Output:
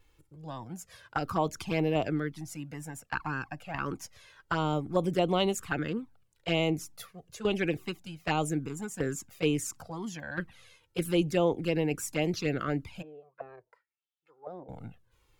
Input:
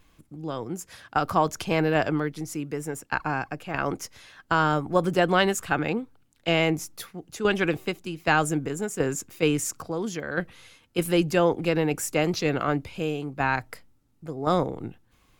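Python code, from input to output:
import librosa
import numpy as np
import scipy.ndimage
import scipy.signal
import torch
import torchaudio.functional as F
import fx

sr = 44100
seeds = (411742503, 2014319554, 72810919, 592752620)

y = fx.auto_wah(x, sr, base_hz=400.0, top_hz=3700.0, q=4.8, full_db=-24.0, direction='down', at=(13.01, 14.68), fade=0.02)
y = fx.env_flanger(y, sr, rest_ms=2.3, full_db=-18.0)
y = y * librosa.db_to_amplitude(-3.5)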